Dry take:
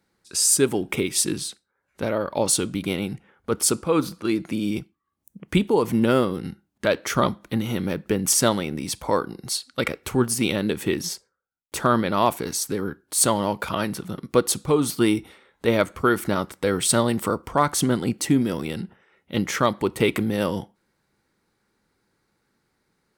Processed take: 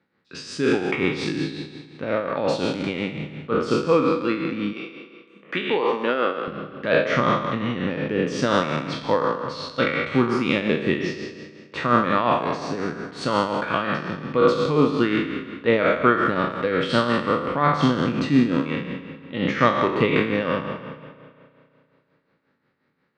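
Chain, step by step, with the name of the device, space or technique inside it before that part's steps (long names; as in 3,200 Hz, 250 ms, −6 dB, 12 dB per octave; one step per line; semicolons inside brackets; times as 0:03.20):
peak hold with a decay on every bin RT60 1.38 s
combo amplifier with spring reverb and tremolo (spring reverb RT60 2.6 s, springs 33 ms, chirp 30 ms, DRR 12.5 dB; amplitude tremolo 5.6 Hz, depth 57%; loudspeaker in its box 88–4,000 Hz, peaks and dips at 150 Hz +6 dB, 260 Hz +6 dB, 510 Hz +5 dB, 1,200 Hz +5 dB, 1,800 Hz +6 dB, 2,600 Hz +4 dB)
0:04.73–0:06.48: high-pass filter 420 Hz 12 dB per octave
level −2.5 dB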